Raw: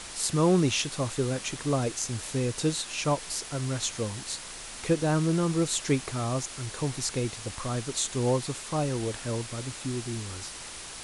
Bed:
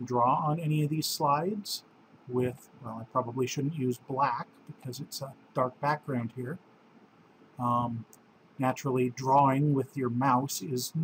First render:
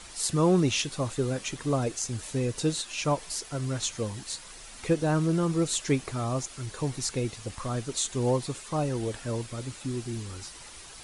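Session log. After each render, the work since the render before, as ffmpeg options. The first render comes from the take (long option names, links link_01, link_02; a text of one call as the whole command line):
ffmpeg -i in.wav -af "afftdn=noise_reduction=8:noise_floor=-42" out.wav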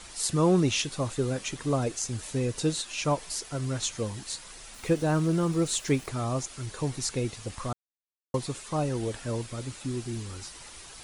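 ffmpeg -i in.wav -filter_complex "[0:a]asettb=1/sr,asplit=3[link_01][link_02][link_03];[link_01]atrim=end=4.744[link_04];[link_02]atrim=start=4.74:end=6.09,asetpts=PTS-STARTPTS,afade=type=in:duration=0.004:curve=qsin,afade=type=out:start_time=1.346:duration=0.004:curve=qsin,aeval=exprs='val(0)*gte(abs(val(0)),0.00501)':channel_layout=same[link_05];[link_03]atrim=start=6.086[link_06];[link_04][link_05]acrossfade=duration=0.004:curve1=hsin:curve2=qsin[link_07];[link_07][link_06]acrossfade=duration=0.004:curve1=qsin:curve2=hsin,asplit=3[link_08][link_09][link_10];[link_08]atrim=end=7.73,asetpts=PTS-STARTPTS,afade=type=out:start_time=7.726:duration=0.004:curve=hsin[link_11];[link_09]atrim=start=7.73:end=8.34,asetpts=PTS-STARTPTS,volume=0[link_12];[link_10]atrim=start=8.34,asetpts=PTS-STARTPTS,afade=type=in:duration=0.004:curve=hsin[link_13];[link_11][link_12][link_13]concat=n=3:v=0:a=1" out.wav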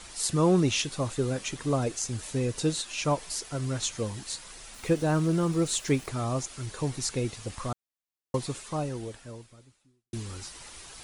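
ffmpeg -i in.wav -filter_complex "[0:a]asplit=2[link_01][link_02];[link_01]atrim=end=10.13,asetpts=PTS-STARTPTS,afade=type=out:start_time=8.57:duration=1.56:curve=qua[link_03];[link_02]atrim=start=10.13,asetpts=PTS-STARTPTS,afade=type=in:duration=0.004:curve=hsin[link_04];[link_03][link_04]concat=n=2:v=0:a=1" out.wav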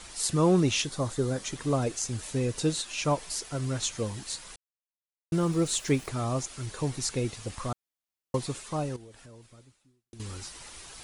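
ffmpeg -i in.wav -filter_complex "[0:a]asettb=1/sr,asplit=3[link_01][link_02][link_03];[link_01]atrim=end=0.854[link_04];[link_02]atrim=start=0.85:end=1.53,asetpts=PTS-STARTPTS,afade=type=in:duration=0.004:curve=qsin,afade=type=out:start_time=0.676:duration=0.004:curve=qsin,equalizer=frequency=2600:width_type=o:width=0.37:gain=-8.5[link_05];[link_03]atrim=start=1.526[link_06];[link_04][link_05]acrossfade=duration=0.004:curve1=hsin:curve2=qsin[link_07];[link_07][link_06]acrossfade=duration=0.004:curve1=qsin:curve2=hsin,asettb=1/sr,asplit=3[link_08][link_09][link_10];[link_08]atrim=end=8.964[link_11];[link_09]atrim=start=8.96:end=10.2,asetpts=PTS-STARTPTS,afade=type=in:duration=0.004:curve=qsin,afade=type=out:start_time=1.236:duration=0.004:curve=qsin,acompressor=threshold=-46dB:ratio=6:attack=3.2:release=140:knee=1:detection=peak[link_12];[link_10]atrim=start=10.196[link_13];[link_11][link_12]acrossfade=duration=0.004:curve1=hsin:curve2=qsin[link_14];[link_14][link_13]acrossfade=duration=0.004:curve1=qsin:curve2=hsin,asplit=3[link_15][link_16][link_17];[link_15]atrim=end=4.56,asetpts=PTS-STARTPTS,afade=type=out:start_time=4.556:duration=0.004:curve=hsin[link_18];[link_16]atrim=start=4.56:end=5.32,asetpts=PTS-STARTPTS,volume=0[link_19];[link_17]atrim=start=5.32,asetpts=PTS-STARTPTS,afade=type=in:duration=0.004:curve=hsin[link_20];[link_18][link_19][link_20]concat=n=3:v=0:a=1" out.wav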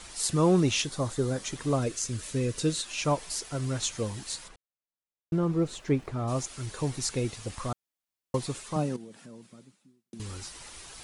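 ffmpeg -i in.wav -filter_complex "[0:a]asettb=1/sr,asplit=3[link_01][link_02][link_03];[link_01]atrim=end=1.794[link_04];[link_02]atrim=start=1.79:end=2.83,asetpts=PTS-STARTPTS,afade=type=in:duration=0.004:curve=qsin,afade=type=out:start_time=1.036:duration=0.004:curve=qsin,equalizer=frequency=800:width=4.2:gain=-11[link_05];[link_03]atrim=start=2.826[link_06];[link_04][link_05]acrossfade=duration=0.004:curve1=hsin:curve2=qsin[link_07];[link_07][link_06]acrossfade=duration=0.004:curve1=qsin:curve2=hsin,asplit=3[link_08][link_09][link_10];[link_08]afade=type=out:start_time=4.47:duration=0.02[link_11];[link_09]lowpass=frequency=1200:poles=1,afade=type=in:start_time=4.47:duration=0.02,afade=type=out:start_time=6.27:duration=0.02[link_12];[link_10]afade=type=in:start_time=6.27:duration=0.02[link_13];[link_11][link_12][link_13]amix=inputs=3:normalize=0,asettb=1/sr,asplit=3[link_14][link_15][link_16];[link_14]atrim=end=8.764[link_17];[link_15]atrim=start=8.76:end=10.2,asetpts=PTS-STARTPTS,afade=type=in:duration=0.004:curve=qsin,afade=type=out:start_time=1.436:duration=0.004:curve=qsin,highpass=frequency=190:width_type=q:width=4.9[link_18];[link_16]atrim=start=10.196[link_19];[link_17][link_18]acrossfade=duration=0.004:curve1=hsin:curve2=qsin[link_20];[link_20][link_19]acrossfade=duration=0.004:curve1=qsin:curve2=hsin" out.wav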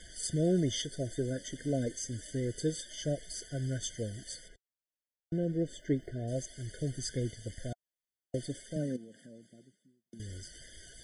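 ffmpeg -i in.wav -af "flanger=delay=0.6:depth=3.3:regen=67:speed=0.28:shape=sinusoidal,afftfilt=real='re*eq(mod(floor(b*sr/1024/730),2),0)':imag='im*eq(mod(floor(b*sr/1024/730),2),0)':win_size=1024:overlap=0.75" out.wav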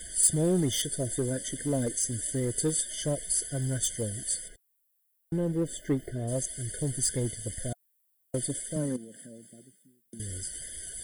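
ffmpeg -i in.wav -filter_complex "[0:a]asplit=2[link_01][link_02];[link_02]asoftclip=type=hard:threshold=-31dB,volume=-4dB[link_03];[link_01][link_03]amix=inputs=2:normalize=0,aexciter=amount=6.7:drive=5.7:freq=8200" out.wav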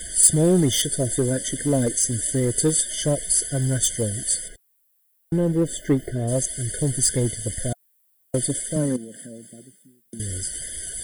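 ffmpeg -i in.wav -af "volume=8dB" out.wav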